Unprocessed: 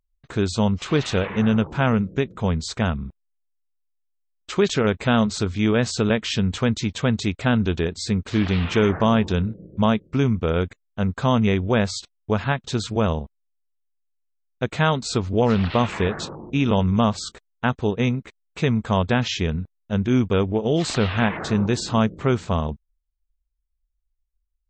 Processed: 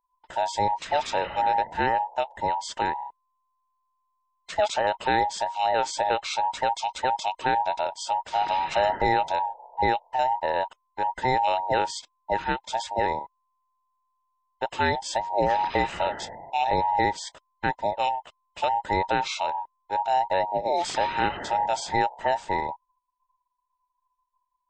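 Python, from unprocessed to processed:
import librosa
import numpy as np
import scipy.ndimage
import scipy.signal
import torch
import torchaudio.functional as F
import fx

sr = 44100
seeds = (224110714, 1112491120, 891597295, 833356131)

y = fx.band_invert(x, sr, width_hz=1000)
y = y * 10.0 ** (-4.5 / 20.0)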